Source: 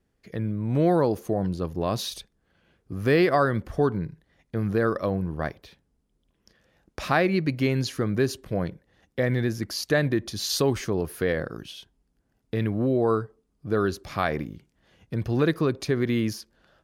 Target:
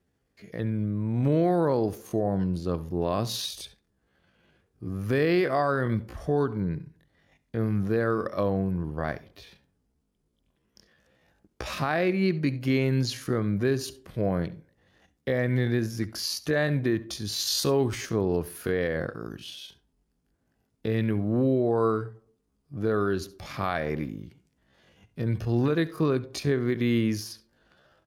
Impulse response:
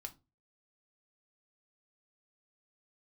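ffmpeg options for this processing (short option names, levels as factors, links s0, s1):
-filter_complex "[0:a]alimiter=limit=0.168:level=0:latency=1:release=110,highpass=49,atempo=0.6,asplit=2[s0][s1];[s1]adelay=90,highpass=300,lowpass=3400,asoftclip=type=hard:threshold=0.0708,volume=0.0398[s2];[s0][s2]amix=inputs=2:normalize=0,asplit=2[s3][s4];[1:a]atrim=start_sample=2205,adelay=68[s5];[s4][s5]afir=irnorm=-1:irlink=0,volume=0.2[s6];[s3][s6]amix=inputs=2:normalize=0"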